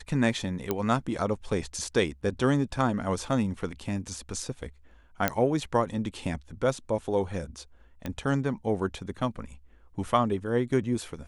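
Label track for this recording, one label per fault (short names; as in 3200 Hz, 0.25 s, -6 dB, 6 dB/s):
0.710000	0.710000	pop -13 dBFS
5.280000	5.280000	pop -8 dBFS
8.060000	8.060000	pop -19 dBFS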